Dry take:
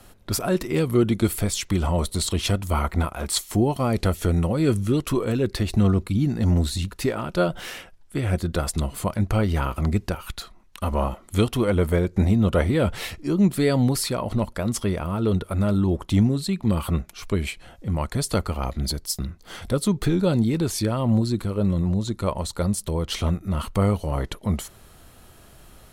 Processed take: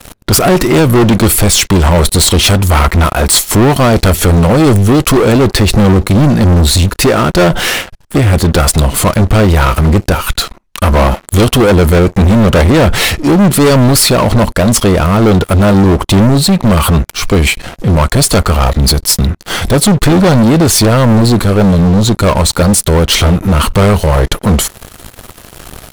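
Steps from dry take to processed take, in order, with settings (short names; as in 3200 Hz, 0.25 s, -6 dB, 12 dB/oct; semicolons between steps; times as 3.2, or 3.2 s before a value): sample leveller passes 5; gain +4.5 dB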